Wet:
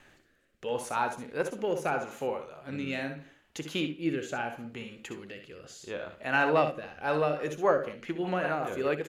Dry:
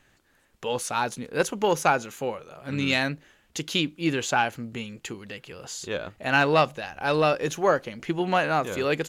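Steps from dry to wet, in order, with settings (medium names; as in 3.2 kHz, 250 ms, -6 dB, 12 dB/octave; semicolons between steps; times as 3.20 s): reverse; upward compressor, threshold -40 dBFS; reverse; tone controls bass -5 dB, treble -5 dB; early reflections 60 ms -8.5 dB, 73 ms -12.5 dB; on a send at -14 dB: reverberation, pre-delay 3 ms; on the sum: rotary cabinet horn 0.75 Hz, later 5 Hz, at 6.72 s; dynamic bell 4.2 kHz, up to -8 dB, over -46 dBFS, Q 0.92; trim -2.5 dB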